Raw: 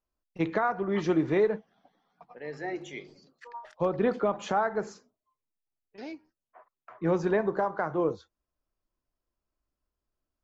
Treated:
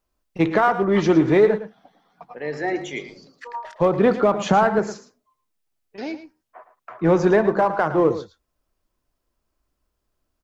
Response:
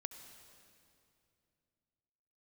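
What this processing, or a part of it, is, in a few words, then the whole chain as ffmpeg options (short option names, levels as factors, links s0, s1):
parallel distortion: -filter_complex "[0:a]asettb=1/sr,asplit=3[s0][s1][s2];[s0]atrim=end=4.384[s3];[s1]atrim=start=4.38:end=4.79,asetpts=PTS-STARTPTS,afade=t=in:d=0.004:c=qsin,afade=t=out:st=0.406:d=0.004:c=qsin,equalizer=f=160:t=o:w=0.94:g=10.5[s4];[s2]atrim=start=4.786[s5];[s3][s4]acrossfade=d=0.004:c1=hsin:c2=qsin[s6];[s6][s5]acrossfade=d=0.004:c1=qsin:c2=hsin,asplit=2[s7][s8];[s8]asoftclip=type=hard:threshold=0.0447,volume=0.376[s9];[s7][s9]amix=inputs=2:normalize=0,aecho=1:1:111:0.237,volume=2.37"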